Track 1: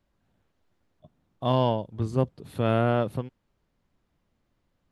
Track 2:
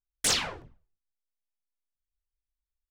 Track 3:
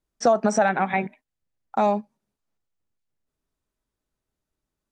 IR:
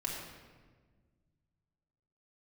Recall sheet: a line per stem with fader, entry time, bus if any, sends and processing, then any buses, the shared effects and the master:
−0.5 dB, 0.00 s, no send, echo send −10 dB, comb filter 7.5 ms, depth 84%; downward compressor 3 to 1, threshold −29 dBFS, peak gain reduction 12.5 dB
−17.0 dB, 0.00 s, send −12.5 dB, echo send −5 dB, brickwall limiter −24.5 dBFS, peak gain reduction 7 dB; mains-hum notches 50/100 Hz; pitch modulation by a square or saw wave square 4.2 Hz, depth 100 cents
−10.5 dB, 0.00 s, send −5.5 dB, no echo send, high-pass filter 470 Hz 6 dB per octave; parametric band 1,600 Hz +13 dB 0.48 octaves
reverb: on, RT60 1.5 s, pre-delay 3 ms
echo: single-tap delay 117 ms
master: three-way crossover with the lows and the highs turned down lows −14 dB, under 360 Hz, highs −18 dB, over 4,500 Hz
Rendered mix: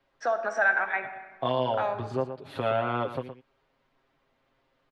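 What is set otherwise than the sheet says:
stem 1 −0.5 dB → +6.5 dB
stem 2: muted

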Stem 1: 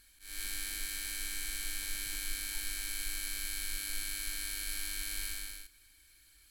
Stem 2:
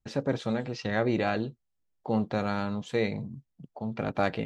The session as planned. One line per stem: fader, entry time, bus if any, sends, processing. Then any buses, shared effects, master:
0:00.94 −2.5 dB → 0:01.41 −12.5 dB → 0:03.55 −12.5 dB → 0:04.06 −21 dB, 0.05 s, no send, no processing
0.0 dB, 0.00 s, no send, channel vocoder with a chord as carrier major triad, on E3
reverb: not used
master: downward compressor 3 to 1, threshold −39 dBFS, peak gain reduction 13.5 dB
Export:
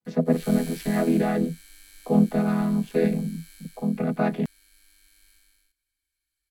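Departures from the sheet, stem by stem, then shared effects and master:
stem 2 0.0 dB → +7.5 dB
master: missing downward compressor 3 to 1, threshold −39 dBFS, peak gain reduction 13.5 dB

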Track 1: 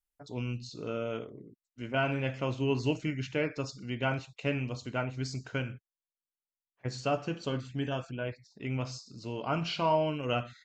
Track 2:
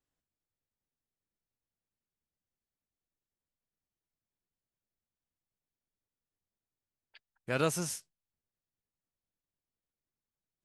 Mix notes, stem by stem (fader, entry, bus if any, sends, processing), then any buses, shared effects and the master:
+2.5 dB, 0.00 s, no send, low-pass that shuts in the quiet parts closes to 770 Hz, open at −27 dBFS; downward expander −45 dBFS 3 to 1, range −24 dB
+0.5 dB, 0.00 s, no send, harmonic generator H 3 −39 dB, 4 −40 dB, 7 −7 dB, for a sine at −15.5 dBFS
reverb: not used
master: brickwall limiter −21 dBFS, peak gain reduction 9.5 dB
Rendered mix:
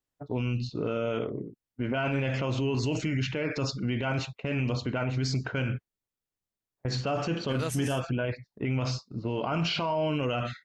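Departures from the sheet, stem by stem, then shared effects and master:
stem 1 +2.5 dB → +13.5 dB
stem 2: missing harmonic generator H 3 −39 dB, 4 −40 dB, 7 −7 dB, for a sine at −15.5 dBFS

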